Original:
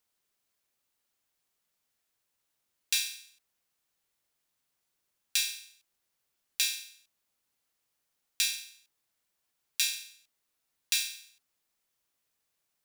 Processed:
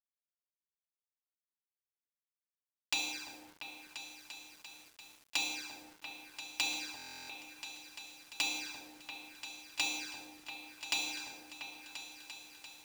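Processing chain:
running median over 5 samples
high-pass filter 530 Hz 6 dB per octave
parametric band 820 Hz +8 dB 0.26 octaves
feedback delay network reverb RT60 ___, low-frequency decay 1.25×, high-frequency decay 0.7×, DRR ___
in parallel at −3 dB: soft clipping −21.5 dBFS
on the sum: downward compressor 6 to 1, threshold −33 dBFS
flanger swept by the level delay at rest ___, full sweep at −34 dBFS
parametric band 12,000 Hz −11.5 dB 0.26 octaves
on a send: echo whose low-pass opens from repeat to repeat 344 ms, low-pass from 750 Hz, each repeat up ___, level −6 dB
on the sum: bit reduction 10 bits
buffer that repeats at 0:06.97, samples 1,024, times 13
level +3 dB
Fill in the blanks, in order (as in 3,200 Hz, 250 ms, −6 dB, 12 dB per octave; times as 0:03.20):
0.41 s, −8.5 dB, 3.8 ms, 2 octaves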